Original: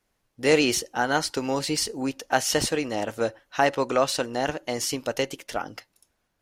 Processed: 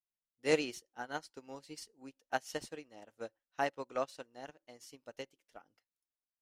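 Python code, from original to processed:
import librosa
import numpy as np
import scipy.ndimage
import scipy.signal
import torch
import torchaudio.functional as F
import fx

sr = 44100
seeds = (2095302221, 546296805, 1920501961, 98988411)

y = fx.peak_eq(x, sr, hz=78.0, db=-8.5, octaves=0.75)
y = fx.upward_expand(y, sr, threshold_db=-33.0, expansion=2.5)
y = F.gain(torch.from_numpy(y), -8.0).numpy()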